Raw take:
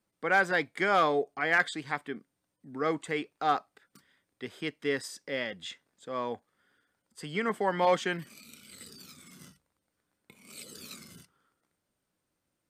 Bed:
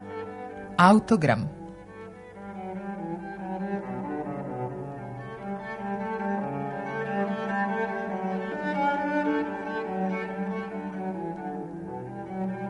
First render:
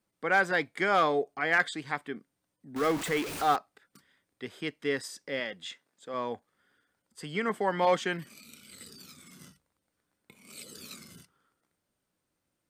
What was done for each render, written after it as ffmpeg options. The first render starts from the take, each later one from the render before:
-filter_complex "[0:a]asettb=1/sr,asplit=3[s0][s1][s2];[s0]atrim=end=2.764[s3];[s1]atrim=start=2.76:end=3.56,asetpts=PTS-STARTPTS,afade=t=in:d=0.004:c=qsin,afade=t=out:st=0.796:d=0.004:c=qsin,aeval=exprs='val(0)+0.5*0.0266*sgn(val(0))':c=same[s4];[s2]atrim=start=3.556[s5];[s3][s4]acrossfade=d=0.004:c1=hsin:c2=qsin[s6];[s6][s5]acrossfade=d=0.004:c1=qsin:c2=hsin,asettb=1/sr,asplit=3[s7][s8][s9];[s7]atrim=end=5.404[s10];[s8]atrim=start=5.4:end=6.14,asetpts=PTS-STARTPTS,afade=t=in:d=0.004:c=qsin,afade=t=out:st=0.736:d=0.004:c=qsin,highpass=f=220:p=1[s11];[s9]atrim=start=6.136[s12];[s10][s11]acrossfade=d=0.004:c1=hsin:c2=qsin[s13];[s13][s12]acrossfade=d=0.004:c1=qsin:c2=hsin"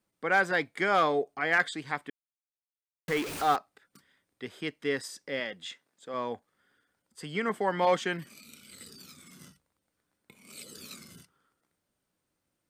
-filter_complex "[0:a]asplit=3[s0][s1][s2];[s0]atrim=end=2.1,asetpts=PTS-STARTPTS,afade=t=out:st=2.096:d=0.004:c=hsin[s3];[s1]atrim=start=2.1:end=3.08,asetpts=PTS-STARTPTS,volume=0[s4];[s2]atrim=start=3.08,asetpts=PTS-STARTPTS,afade=t=in:d=0.004:c=hsin[s5];[s3][s4][s5]concat=n=3:v=0:a=1"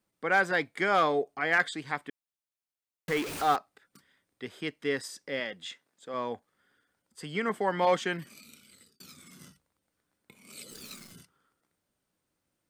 -filter_complex "[0:a]asettb=1/sr,asplit=3[s0][s1][s2];[s0]atrim=end=10.714[s3];[s1]atrim=start=10.71:end=11.12,asetpts=PTS-STARTPTS,afade=t=in:d=0.004:c=qsin,afade=t=out:st=0.406:d=0.004:c=qsin,acrusher=bits=9:dc=4:mix=0:aa=0.000001[s4];[s2]atrim=start=11.116[s5];[s3][s4]acrossfade=d=0.004:c1=hsin:c2=qsin[s6];[s6][s5]acrossfade=d=0.004:c1=qsin:c2=hsin,asplit=2[s7][s8];[s7]atrim=end=9,asetpts=PTS-STARTPTS,afade=t=out:st=8.39:d=0.61[s9];[s8]atrim=start=9,asetpts=PTS-STARTPTS,afade=t=in:d=0.004:c=hsin[s10];[s9][s10]concat=n=2:v=0:a=1"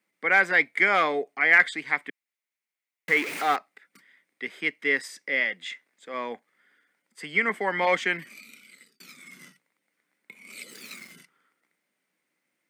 -af "highpass=f=180:w=0.5412,highpass=f=180:w=1.3066,equalizer=f=2100:t=o:w=0.57:g=14.5"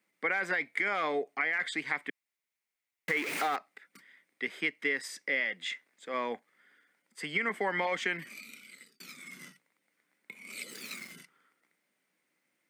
-af "alimiter=limit=0.178:level=0:latency=1:release=17,acompressor=threshold=0.0447:ratio=6"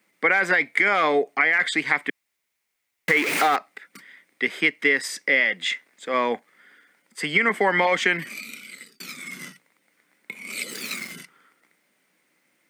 -af "volume=3.55"

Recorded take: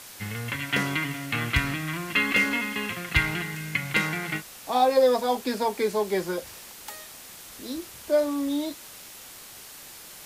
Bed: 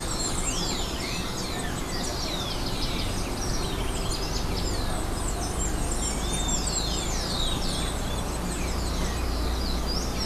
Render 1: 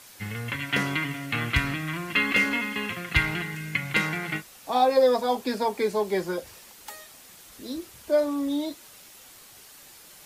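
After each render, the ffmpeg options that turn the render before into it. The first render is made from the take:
-af "afftdn=nr=6:nf=-45"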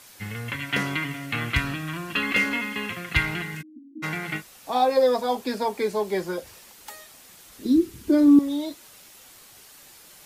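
-filter_complex "[0:a]asettb=1/sr,asplit=3[s0][s1][s2];[s0]atrim=end=1.614[s3];[s1]atrim=start=1.61:end=2.23,asetpts=PTS-STARTPTS,afade=t=in:d=0.004:c=qsin,afade=t=out:st=0.616:d=0.004:c=qsin,bandreject=f=2100:w=6.4[s4];[s2]atrim=start=2.226[s5];[s3][s4]acrossfade=d=0.004:c1=hsin:c2=qsin[s6];[s6][s5]acrossfade=d=0.004:c1=qsin:c2=hsin,asplit=3[s7][s8][s9];[s7]afade=t=out:st=3.61:d=0.02[s10];[s8]asuperpass=centerf=280:order=12:qfactor=2.8,afade=t=in:st=3.61:d=0.02,afade=t=out:st=4.02:d=0.02[s11];[s9]afade=t=in:st=4.02:d=0.02[s12];[s10][s11][s12]amix=inputs=3:normalize=0,asettb=1/sr,asplit=3[s13][s14][s15];[s13]atrim=end=7.654[s16];[s14]atrim=start=7.65:end=8.39,asetpts=PTS-STARTPTS,afade=t=in:d=0.004:c=qsin,afade=t=out:st=0.736:d=0.004:c=qsin,lowshelf=f=440:t=q:w=3:g=10[s17];[s15]atrim=start=8.386[s18];[s16][s17]acrossfade=d=0.004:c1=hsin:c2=qsin[s19];[s19][s18]acrossfade=d=0.004:c1=qsin:c2=hsin"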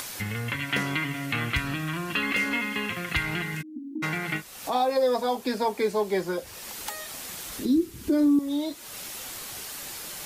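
-filter_complex "[0:a]acrossover=split=6000[s0][s1];[s0]alimiter=limit=0.168:level=0:latency=1:release=178[s2];[s2][s1]amix=inputs=2:normalize=0,acompressor=mode=upward:threshold=0.0501:ratio=2.5"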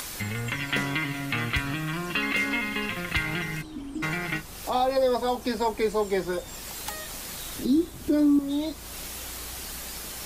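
-filter_complex "[1:a]volume=0.141[s0];[0:a][s0]amix=inputs=2:normalize=0"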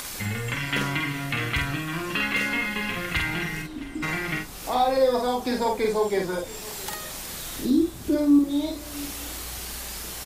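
-filter_complex "[0:a]asplit=2[s0][s1];[s1]adelay=49,volume=0.708[s2];[s0][s2]amix=inputs=2:normalize=0,aecho=1:1:666:0.1"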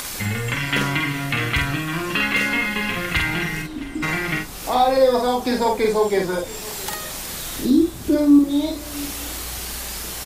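-af "volume=1.78"

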